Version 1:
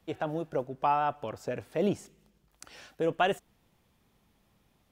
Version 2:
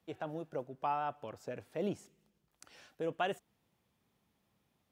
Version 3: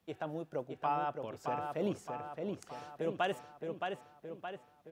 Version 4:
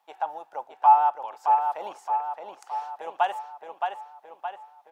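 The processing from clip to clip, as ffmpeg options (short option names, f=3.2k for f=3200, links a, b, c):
-af "highpass=79,volume=-8dB"
-filter_complex "[0:a]asplit=2[a][b];[b]adelay=619,lowpass=f=5k:p=1,volume=-4.5dB,asplit=2[c][d];[d]adelay=619,lowpass=f=5k:p=1,volume=0.54,asplit=2[e][f];[f]adelay=619,lowpass=f=5k:p=1,volume=0.54,asplit=2[g][h];[h]adelay=619,lowpass=f=5k:p=1,volume=0.54,asplit=2[i][j];[j]adelay=619,lowpass=f=5k:p=1,volume=0.54,asplit=2[k][l];[l]adelay=619,lowpass=f=5k:p=1,volume=0.54,asplit=2[m][n];[n]adelay=619,lowpass=f=5k:p=1,volume=0.54[o];[a][c][e][g][i][k][m][o]amix=inputs=8:normalize=0,volume=1dB"
-af "highpass=f=850:t=q:w=9.4,volume=1.5dB"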